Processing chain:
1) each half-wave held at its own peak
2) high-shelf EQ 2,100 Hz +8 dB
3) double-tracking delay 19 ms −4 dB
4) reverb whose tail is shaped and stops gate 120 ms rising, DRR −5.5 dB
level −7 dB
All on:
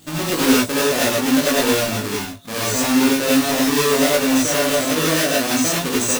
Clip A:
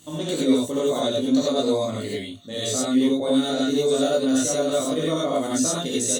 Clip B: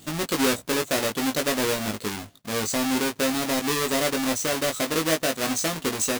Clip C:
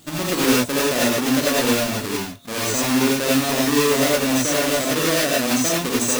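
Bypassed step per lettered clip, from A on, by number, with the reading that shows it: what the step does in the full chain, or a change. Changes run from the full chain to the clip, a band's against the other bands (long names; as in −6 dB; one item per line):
1, distortion level −5 dB
4, change in momentary loudness spread −1 LU
3, change in integrated loudness −1.5 LU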